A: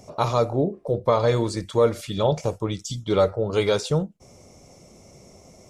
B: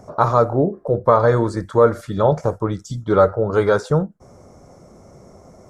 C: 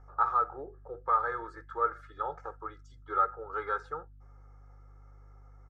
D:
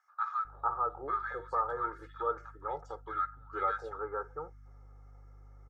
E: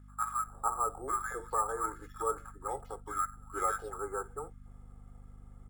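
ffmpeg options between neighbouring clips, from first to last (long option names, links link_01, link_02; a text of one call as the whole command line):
ffmpeg -i in.wav -af "highshelf=frequency=2000:width_type=q:width=3:gain=-9,volume=4.5dB" out.wav
ffmpeg -i in.wav -af "bandpass=frequency=1400:width_type=q:width=3.2:csg=0,aeval=exprs='val(0)+0.00398*(sin(2*PI*50*n/s)+sin(2*PI*2*50*n/s)/2+sin(2*PI*3*50*n/s)/3+sin(2*PI*4*50*n/s)/4+sin(2*PI*5*50*n/s)/5)':channel_layout=same,aecho=1:1:2.4:0.88,volume=-8dB" out.wav
ffmpeg -i in.wav -filter_complex "[0:a]acrossover=split=1300[link_01][link_02];[link_01]adelay=450[link_03];[link_03][link_02]amix=inputs=2:normalize=0" out.wav
ffmpeg -i in.wav -af "afreqshift=-22,aeval=exprs='val(0)+0.00251*(sin(2*PI*50*n/s)+sin(2*PI*2*50*n/s)/2+sin(2*PI*3*50*n/s)/3+sin(2*PI*4*50*n/s)/4+sin(2*PI*5*50*n/s)/5)':channel_layout=same,acrusher=samples=5:mix=1:aa=0.000001" out.wav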